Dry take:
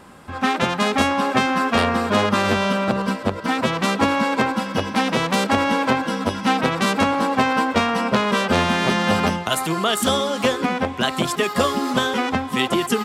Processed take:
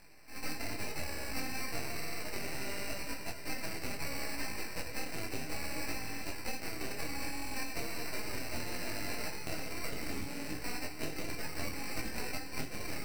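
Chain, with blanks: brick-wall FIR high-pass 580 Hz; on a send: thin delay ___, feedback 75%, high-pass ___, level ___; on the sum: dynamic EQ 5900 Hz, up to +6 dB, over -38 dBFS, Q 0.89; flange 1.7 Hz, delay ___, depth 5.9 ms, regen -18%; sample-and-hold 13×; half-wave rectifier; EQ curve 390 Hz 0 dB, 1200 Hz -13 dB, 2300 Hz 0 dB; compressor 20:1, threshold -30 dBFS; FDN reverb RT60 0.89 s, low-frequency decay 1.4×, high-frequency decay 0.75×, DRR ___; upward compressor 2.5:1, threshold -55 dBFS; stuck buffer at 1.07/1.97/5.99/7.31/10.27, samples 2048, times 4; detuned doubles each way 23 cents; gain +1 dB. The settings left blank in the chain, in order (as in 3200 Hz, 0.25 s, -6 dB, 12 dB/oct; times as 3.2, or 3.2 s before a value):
73 ms, 1500 Hz, -12 dB, 9.9 ms, 8.5 dB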